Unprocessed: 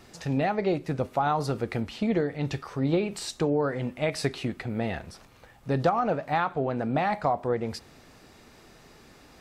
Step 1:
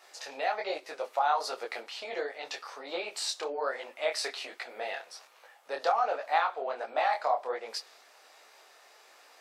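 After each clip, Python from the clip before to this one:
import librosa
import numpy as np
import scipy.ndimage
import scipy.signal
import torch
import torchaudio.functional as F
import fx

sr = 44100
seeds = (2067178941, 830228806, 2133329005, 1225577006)

y = scipy.signal.sosfilt(scipy.signal.butter(4, 550.0, 'highpass', fs=sr, output='sos'), x)
y = fx.dynamic_eq(y, sr, hz=4700.0, q=1.3, threshold_db=-54.0, ratio=4.0, max_db=5)
y = fx.detune_double(y, sr, cents=45)
y = y * 10.0 ** (2.5 / 20.0)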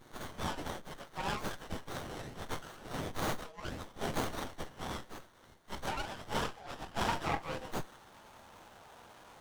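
y = fx.partial_stretch(x, sr, pct=110)
y = fx.filter_sweep_highpass(y, sr, from_hz=2500.0, to_hz=650.0, start_s=6.51, end_s=8.81, q=0.92)
y = fx.running_max(y, sr, window=17)
y = y * 10.0 ** (9.5 / 20.0)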